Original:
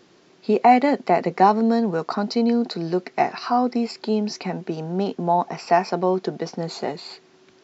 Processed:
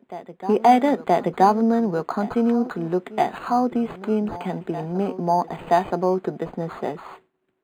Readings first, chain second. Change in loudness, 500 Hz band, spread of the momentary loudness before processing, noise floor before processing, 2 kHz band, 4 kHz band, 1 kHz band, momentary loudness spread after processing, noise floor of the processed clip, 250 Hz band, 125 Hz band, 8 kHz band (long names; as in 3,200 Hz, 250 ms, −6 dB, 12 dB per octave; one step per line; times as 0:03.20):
−0.5 dB, 0.0 dB, 12 LU, −55 dBFS, −3.0 dB, −7.0 dB, −0.5 dB, 12 LU, −69 dBFS, 0.0 dB, 0.0 dB, can't be measured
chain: downward expander −41 dBFS
backwards echo 975 ms −16 dB
linearly interpolated sample-rate reduction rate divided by 8×